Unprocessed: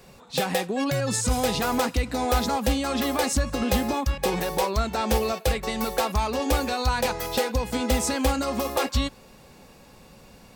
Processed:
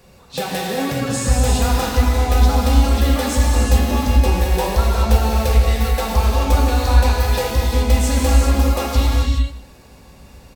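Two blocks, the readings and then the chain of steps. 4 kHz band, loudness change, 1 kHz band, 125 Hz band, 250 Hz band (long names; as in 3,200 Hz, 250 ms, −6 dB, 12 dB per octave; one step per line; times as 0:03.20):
+4.0 dB, +8.0 dB, +4.0 dB, +14.0 dB, +5.0 dB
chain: parametric band 62 Hz +13.5 dB 0.92 octaves
single-tap delay 155 ms −18 dB
reverb whose tail is shaped and stops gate 450 ms flat, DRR −3 dB
level −1 dB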